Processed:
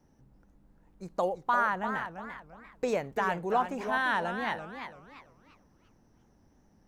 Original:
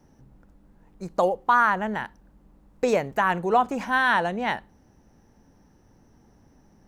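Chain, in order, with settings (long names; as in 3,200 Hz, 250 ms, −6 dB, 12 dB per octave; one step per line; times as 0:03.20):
feedback echo with a swinging delay time 341 ms, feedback 32%, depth 194 cents, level −8.5 dB
level −7.5 dB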